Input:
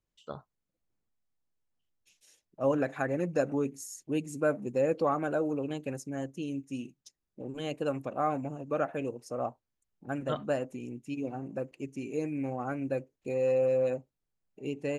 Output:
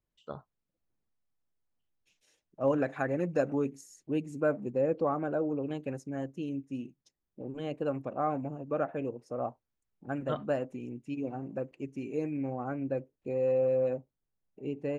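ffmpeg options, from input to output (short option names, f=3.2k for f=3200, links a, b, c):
-af "asetnsamples=n=441:p=0,asendcmd='2.68 lowpass f 3800;3.81 lowpass f 2000;4.7 lowpass f 1000;5.67 lowpass f 2200;6.49 lowpass f 1400;9.48 lowpass f 2400;12.37 lowpass f 1200',lowpass=f=2.3k:p=1"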